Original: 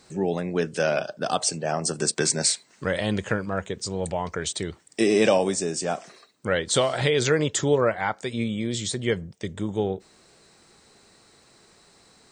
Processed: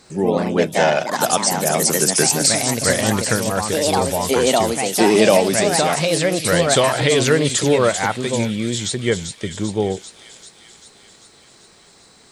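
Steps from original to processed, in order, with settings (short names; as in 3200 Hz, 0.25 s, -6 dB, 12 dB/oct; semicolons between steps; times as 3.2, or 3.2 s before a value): echoes that change speed 99 ms, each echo +3 st, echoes 2; thin delay 0.392 s, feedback 65%, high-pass 3400 Hz, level -5.5 dB; gain +5.5 dB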